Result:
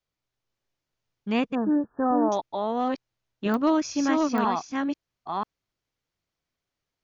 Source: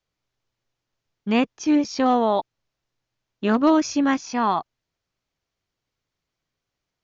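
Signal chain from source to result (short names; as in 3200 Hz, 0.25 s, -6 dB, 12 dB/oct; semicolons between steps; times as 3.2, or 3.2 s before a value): reverse delay 0.494 s, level -2.5 dB; 1.55–2.32 brick-wall FIR low-pass 1800 Hz; pops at 3.54/4.38, -13 dBFS; gain -5 dB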